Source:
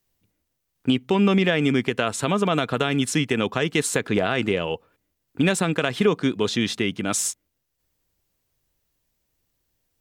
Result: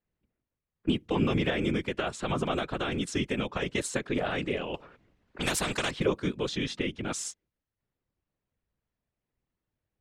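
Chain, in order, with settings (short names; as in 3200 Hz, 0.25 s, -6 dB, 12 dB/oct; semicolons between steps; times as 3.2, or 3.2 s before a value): whisperiser; low-pass opened by the level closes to 2200 Hz, open at -16.5 dBFS; 4.74–5.91 spectral compressor 2:1; gain -8 dB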